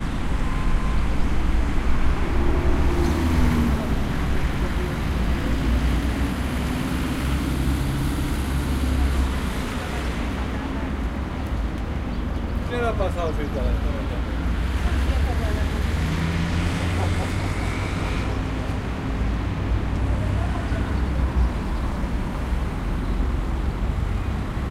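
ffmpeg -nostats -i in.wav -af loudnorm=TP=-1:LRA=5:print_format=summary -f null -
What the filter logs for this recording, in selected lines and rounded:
Input Integrated:    -25.2 LUFS
Input True Peak:      -6.7 dBTP
Input LRA:             3.5 LU
Input Threshold:     -35.2 LUFS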